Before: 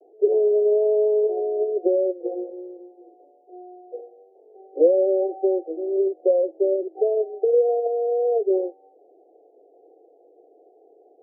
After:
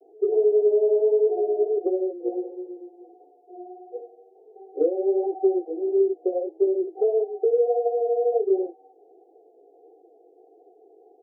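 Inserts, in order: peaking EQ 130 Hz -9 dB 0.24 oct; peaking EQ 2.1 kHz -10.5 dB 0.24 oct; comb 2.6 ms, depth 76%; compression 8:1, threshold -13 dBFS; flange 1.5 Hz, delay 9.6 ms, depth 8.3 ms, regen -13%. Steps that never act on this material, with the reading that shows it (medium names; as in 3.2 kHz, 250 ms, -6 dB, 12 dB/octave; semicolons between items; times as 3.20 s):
peaking EQ 130 Hz: input has nothing below 290 Hz; peaking EQ 2.1 kHz: input has nothing above 810 Hz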